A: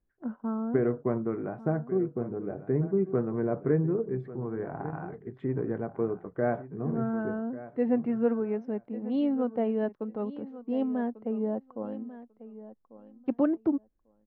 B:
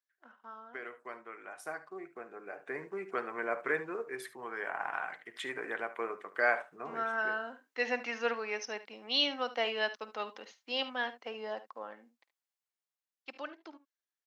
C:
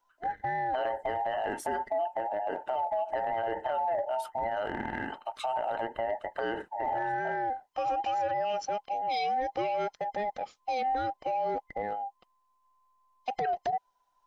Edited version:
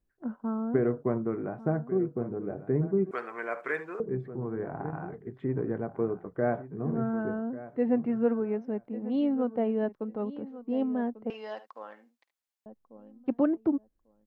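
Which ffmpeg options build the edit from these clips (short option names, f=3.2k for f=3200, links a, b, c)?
-filter_complex "[1:a]asplit=2[a][b];[0:a]asplit=3[c][d][e];[c]atrim=end=3.112[f];[a]atrim=start=3.108:end=4.002[g];[d]atrim=start=3.998:end=11.302[h];[b]atrim=start=11.298:end=12.662[i];[e]atrim=start=12.658[j];[f][g]acrossfade=d=0.004:c1=hsin:c2=hsin[k];[k][h]acrossfade=d=0.004:c1=hsin:c2=hsin[l];[l][i]acrossfade=d=0.004:c1=hsin:c2=hsin[m];[m][j]acrossfade=d=0.004:c1=hsin:c2=hsin"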